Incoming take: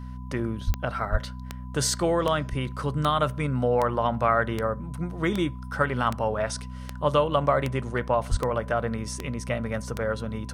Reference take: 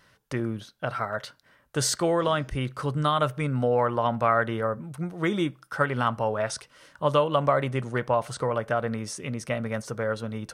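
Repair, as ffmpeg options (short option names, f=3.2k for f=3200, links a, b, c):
-filter_complex "[0:a]adeclick=t=4,bandreject=f=62.8:t=h:w=4,bandreject=f=125.6:t=h:w=4,bandreject=f=188.4:t=h:w=4,bandreject=f=251.2:t=h:w=4,bandreject=f=1k:w=30,asplit=3[a][b][c];[a]afade=t=out:st=0.66:d=0.02[d];[b]highpass=f=140:w=0.5412,highpass=f=140:w=1.3066,afade=t=in:st=0.66:d=0.02,afade=t=out:st=0.78:d=0.02[e];[c]afade=t=in:st=0.78:d=0.02[f];[d][e][f]amix=inputs=3:normalize=0,asplit=3[g][h][i];[g]afade=t=out:st=1.11:d=0.02[j];[h]highpass=f=140:w=0.5412,highpass=f=140:w=1.3066,afade=t=in:st=1.11:d=0.02,afade=t=out:st=1.23:d=0.02[k];[i]afade=t=in:st=1.23:d=0.02[l];[j][k][l]amix=inputs=3:normalize=0,asplit=3[m][n][o];[m]afade=t=out:st=8.3:d=0.02[p];[n]highpass=f=140:w=0.5412,highpass=f=140:w=1.3066,afade=t=in:st=8.3:d=0.02,afade=t=out:st=8.42:d=0.02[q];[o]afade=t=in:st=8.42:d=0.02[r];[p][q][r]amix=inputs=3:normalize=0"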